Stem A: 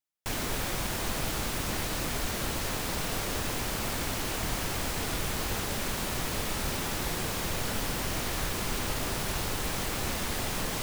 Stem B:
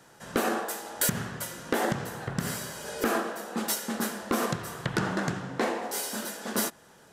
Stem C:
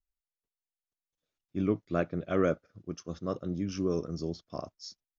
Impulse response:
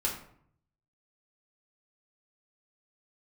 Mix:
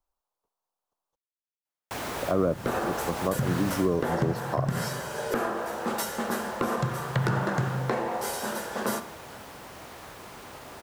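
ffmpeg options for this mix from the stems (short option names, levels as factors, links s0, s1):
-filter_complex "[0:a]highpass=65,adelay=1650,volume=0.531,afade=t=out:st=3.72:d=0.5:silence=0.298538[s0];[1:a]equalizer=f=130:w=4:g=12,adelay=2300,volume=0.631,asplit=2[s1][s2];[s2]volume=0.224[s3];[2:a]equalizer=f=500:t=o:w=1:g=3,equalizer=f=1000:t=o:w=1:g=10,equalizer=f=2000:t=o:w=1:g=-11,volume=1.41,asplit=3[s4][s5][s6];[s4]atrim=end=1.16,asetpts=PTS-STARTPTS,afade=t=out:st=1.156:d=0.004:c=hsin[s7];[s5]atrim=start=1.16:end=2.22,asetpts=PTS-STARTPTS,volume=0[s8];[s6]atrim=start=2.22,asetpts=PTS-STARTPTS,afade=t=in:d=0.004:c=hsin[s9];[s7][s8][s9]concat=n=3:v=0:a=1[s10];[3:a]atrim=start_sample=2205[s11];[s3][s11]afir=irnorm=-1:irlink=0[s12];[s0][s1][s10][s12]amix=inputs=4:normalize=0,equalizer=f=820:t=o:w=2.5:g=9.5,acrossover=split=240[s13][s14];[s14]acompressor=threshold=0.0501:ratio=6[s15];[s13][s15]amix=inputs=2:normalize=0"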